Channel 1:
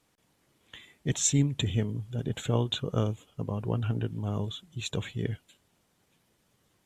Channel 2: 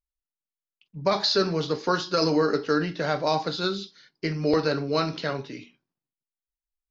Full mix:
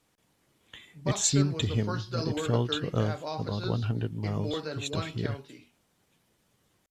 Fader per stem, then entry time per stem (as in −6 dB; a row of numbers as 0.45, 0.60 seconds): 0.0, −11.5 decibels; 0.00, 0.00 seconds